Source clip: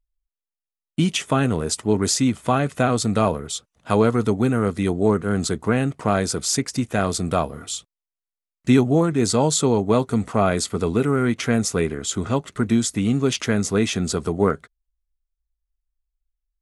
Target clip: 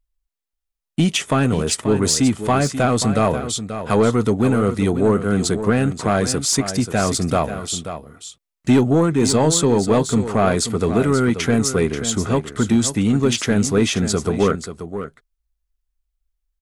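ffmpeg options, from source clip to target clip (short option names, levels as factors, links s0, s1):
-af "asoftclip=type=tanh:threshold=0.282,aecho=1:1:534:0.299,volume=1.58"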